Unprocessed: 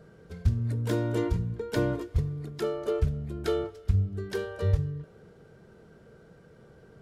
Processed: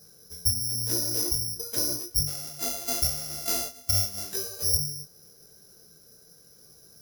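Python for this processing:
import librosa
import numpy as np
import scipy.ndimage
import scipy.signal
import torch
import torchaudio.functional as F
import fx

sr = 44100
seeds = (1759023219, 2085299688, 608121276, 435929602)

y = fx.sample_sort(x, sr, block=64, at=(2.27, 4.32))
y = (np.kron(y[::8], np.eye(8)[0]) * 8)[:len(y)]
y = fx.detune_double(y, sr, cents=31)
y = y * 10.0 ** (-5.5 / 20.0)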